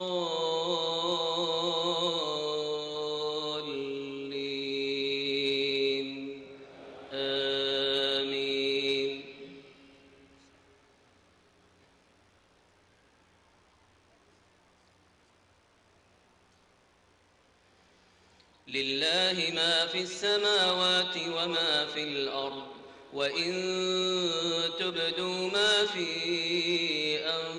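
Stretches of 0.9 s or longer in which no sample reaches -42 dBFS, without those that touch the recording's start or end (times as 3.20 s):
9.59–18.68 s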